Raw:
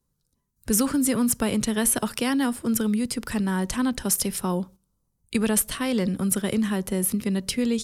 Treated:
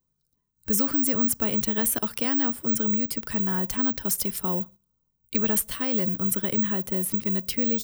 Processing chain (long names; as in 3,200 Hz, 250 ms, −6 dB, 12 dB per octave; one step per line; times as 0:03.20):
floating-point word with a short mantissa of 4 bits
bad sample-rate conversion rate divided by 2×, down filtered, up zero stuff
level −4 dB